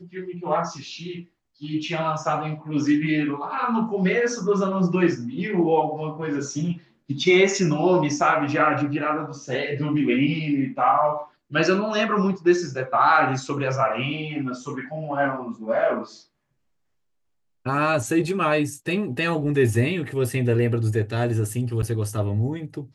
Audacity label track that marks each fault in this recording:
21.820000	21.830000	dropout 8.6 ms

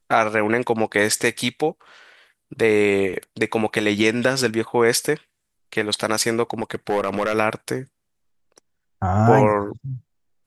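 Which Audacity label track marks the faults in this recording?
6.500000	7.340000	clipped -15 dBFS

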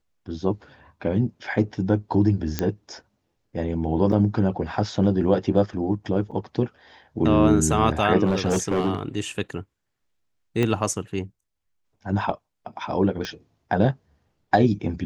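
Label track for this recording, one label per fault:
2.590000	2.590000	pop -8 dBFS
4.120000	4.120000	dropout 4.9 ms
6.310000	6.320000	dropout 6.5 ms
8.260000	8.990000	clipped -17 dBFS
10.630000	10.630000	pop -11 dBFS
13.250000	13.250000	pop -16 dBFS

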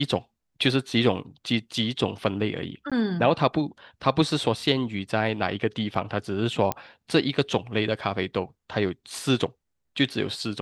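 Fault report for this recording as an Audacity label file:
2.900000	2.920000	dropout 16 ms
6.720000	6.720000	pop -11 dBFS

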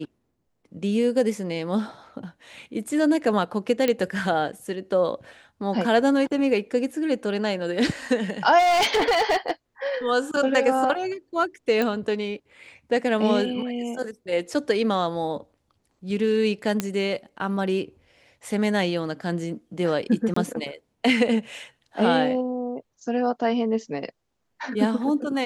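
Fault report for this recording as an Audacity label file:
3.880000	3.880000	pop -9 dBFS
8.580000	9.510000	clipped -17 dBFS
11.820000	11.820000	pop -12 dBFS
16.800000	16.800000	pop -9 dBFS
20.340000	20.360000	dropout 24 ms

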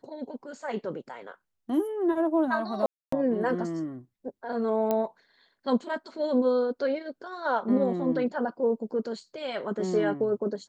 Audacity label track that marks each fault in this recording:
2.860000	3.120000	dropout 264 ms
4.910000	4.910000	pop -14 dBFS

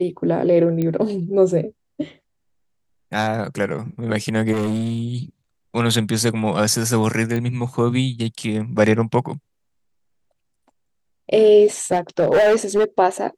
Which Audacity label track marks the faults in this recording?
0.820000	0.820000	pop -12 dBFS
4.520000	5.030000	clipped -19 dBFS
7.360000	7.360000	pop -14 dBFS
11.910000	12.850000	clipped -11.5 dBFS

